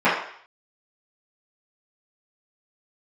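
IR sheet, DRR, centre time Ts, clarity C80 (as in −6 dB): −14.5 dB, 45 ms, 7.5 dB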